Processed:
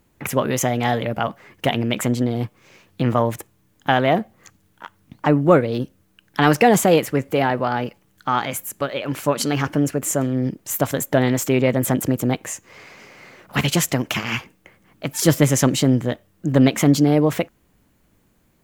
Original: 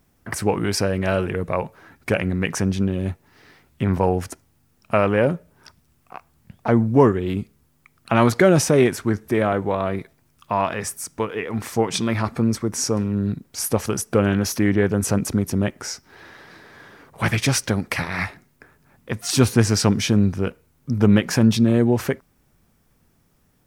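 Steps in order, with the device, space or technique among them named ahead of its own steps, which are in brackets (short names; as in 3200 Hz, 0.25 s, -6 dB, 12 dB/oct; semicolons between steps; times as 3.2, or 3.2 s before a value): nightcore (varispeed +27%); gain +1 dB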